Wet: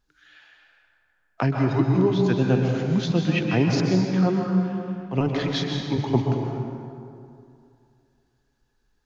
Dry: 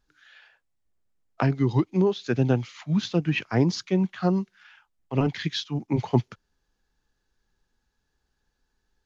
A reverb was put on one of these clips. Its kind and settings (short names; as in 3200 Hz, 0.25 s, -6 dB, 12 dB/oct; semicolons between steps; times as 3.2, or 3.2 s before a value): plate-style reverb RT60 2.5 s, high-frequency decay 0.55×, pre-delay 0.115 s, DRR 0.5 dB